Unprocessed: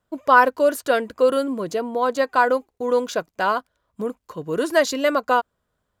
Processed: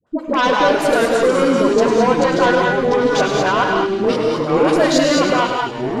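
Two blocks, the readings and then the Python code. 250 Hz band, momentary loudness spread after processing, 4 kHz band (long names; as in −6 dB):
+10.5 dB, 4 LU, +10.0 dB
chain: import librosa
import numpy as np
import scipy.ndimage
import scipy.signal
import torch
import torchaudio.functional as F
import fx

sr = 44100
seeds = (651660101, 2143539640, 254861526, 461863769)

p1 = fx.highpass(x, sr, hz=230.0, slope=6)
p2 = fx.over_compress(p1, sr, threshold_db=-23.0, ratio=-0.5)
p3 = p1 + (p2 * 10.0 ** (0.5 / 20.0))
p4 = fx.cheby_harmonics(p3, sr, harmonics=(5, 6), levels_db=(-7, -19), full_scale_db=-2.0)
p5 = fx.dispersion(p4, sr, late='highs', ms=68.0, hz=690.0)
p6 = fx.echo_pitch(p5, sr, ms=119, semitones=-4, count=3, db_per_echo=-6.0)
p7 = fx.air_absorb(p6, sr, metres=77.0)
p8 = p7 + fx.echo_wet_highpass(p7, sr, ms=104, feedback_pct=64, hz=2000.0, wet_db=-9.0, dry=0)
p9 = fx.rev_gated(p8, sr, seeds[0], gate_ms=240, shape='rising', drr_db=1.5)
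y = p9 * 10.0 ** (-8.0 / 20.0)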